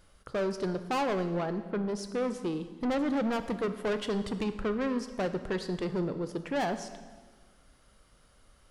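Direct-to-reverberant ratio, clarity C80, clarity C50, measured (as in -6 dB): 9.5 dB, 12.5 dB, 11.0 dB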